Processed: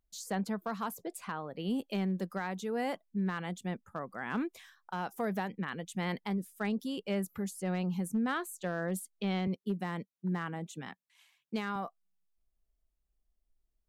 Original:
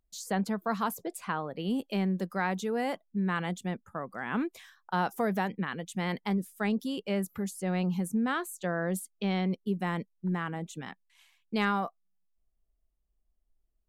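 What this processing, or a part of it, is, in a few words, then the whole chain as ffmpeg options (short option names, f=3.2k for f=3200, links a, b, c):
limiter into clipper: -filter_complex "[0:a]asettb=1/sr,asplit=3[a][b][c];[a]atrim=end=9.474[d];[b]atrim=start=9.47:end=11.76,asetpts=PTS-STARTPTS,afade=t=in:d=0.004:c=qsin,afade=t=out:st=2.286:d=0.004:c=qsin,highpass=f=88:w=0.5412,highpass=f=88:w=1.3066[e];[c]atrim=start=11.756[f];[d][e]acrossfade=d=0.004:c1=hsin:c2=qsin[g];[g][f]acrossfade=d=0.004:c1=qsin:c2=hsin,alimiter=limit=-21.5dB:level=0:latency=1:release=367,asoftclip=type=hard:threshold=-23dB,volume=-2.5dB"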